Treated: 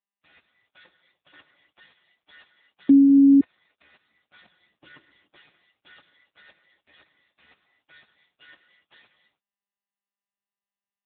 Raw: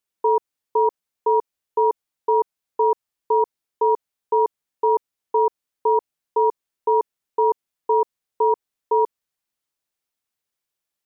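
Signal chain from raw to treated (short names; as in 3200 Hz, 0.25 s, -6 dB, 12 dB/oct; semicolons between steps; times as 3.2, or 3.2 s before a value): median filter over 25 samples; notches 60/120/180/240/300 Hz; 0.85–1.34 compressor 16:1, threshold -22 dBFS, peak gain reduction 7 dB; flange 0.28 Hz, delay 2.8 ms, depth 5.6 ms, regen +21%; spectral gate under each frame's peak -30 dB weak; 4.41–5.38 low shelf 460 Hz +8.5 dB; 6.91–7.43 flutter echo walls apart 9.2 m, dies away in 0.22 s; non-linear reverb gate 0.32 s flat, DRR 8 dB; 2.89–3.41 bleep 277 Hz -8 dBFS; AMR-NB 6.7 kbps 8000 Hz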